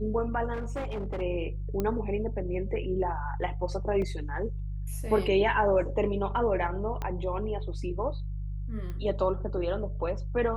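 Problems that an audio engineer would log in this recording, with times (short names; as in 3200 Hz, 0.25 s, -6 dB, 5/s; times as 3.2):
hum 50 Hz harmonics 3 -34 dBFS
0.53–1.22 clipped -29.5 dBFS
1.8 pop -17 dBFS
4.02 gap 2.6 ms
7.02 pop -20 dBFS
8.9 pop -27 dBFS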